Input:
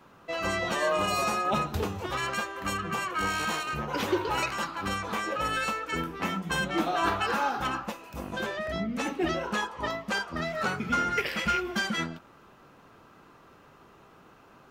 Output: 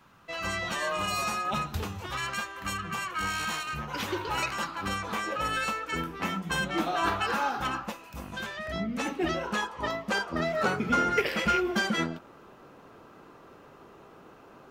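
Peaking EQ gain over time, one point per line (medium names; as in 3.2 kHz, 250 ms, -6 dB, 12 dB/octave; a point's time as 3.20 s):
peaking EQ 440 Hz 1.9 oct
4.04 s -8.5 dB
4.55 s -2 dB
7.93 s -2 dB
8.52 s -12.5 dB
8.79 s -1 dB
9.74 s -1 dB
10.33 s +6 dB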